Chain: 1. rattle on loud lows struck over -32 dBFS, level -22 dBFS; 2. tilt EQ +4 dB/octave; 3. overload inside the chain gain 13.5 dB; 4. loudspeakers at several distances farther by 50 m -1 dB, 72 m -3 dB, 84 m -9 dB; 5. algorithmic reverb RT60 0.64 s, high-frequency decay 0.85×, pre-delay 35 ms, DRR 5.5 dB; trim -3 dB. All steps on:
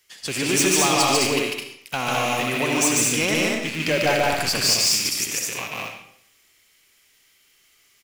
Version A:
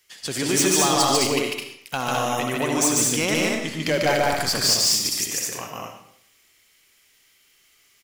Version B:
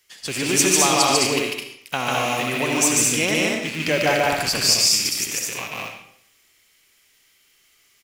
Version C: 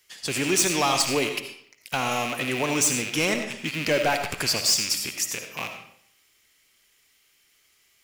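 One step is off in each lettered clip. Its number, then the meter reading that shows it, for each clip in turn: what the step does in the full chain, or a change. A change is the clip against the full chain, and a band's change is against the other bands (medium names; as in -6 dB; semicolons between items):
1, 2 kHz band -3.5 dB; 3, distortion -12 dB; 4, loudness change -4.0 LU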